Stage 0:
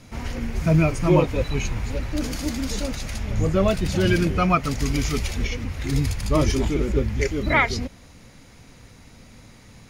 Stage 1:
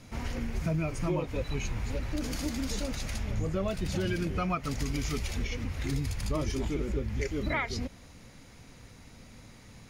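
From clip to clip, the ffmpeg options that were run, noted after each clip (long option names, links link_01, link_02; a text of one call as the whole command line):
ffmpeg -i in.wav -af "acompressor=threshold=-24dB:ratio=4,volume=-4dB" out.wav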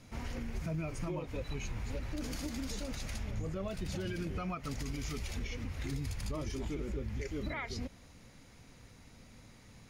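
ffmpeg -i in.wav -af "alimiter=limit=-24dB:level=0:latency=1:release=62,volume=-5dB" out.wav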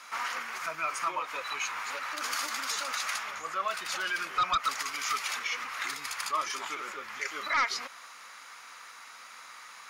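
ffmpeg -i in.wav -af "highpass=frequency=1200:width_type=q:width=3.7,aeval=exprs='0.1*sin(PI/2*2.82*val(0)/0.1)':channel_layout=same,volume=-1.5dB" out.wav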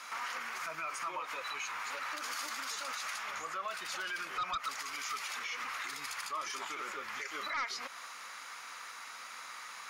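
ffmpeg -i in.wav -af "alimiter=level_in=8dB:limit=-24dB:level=0:latency=1:release=148,volume=-8dB,volume=1.5dB" out.wav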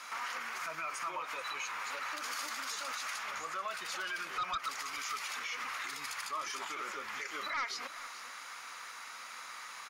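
ffmpeg -i in.wav -af "aecho=1:1:434:0.178" out.wav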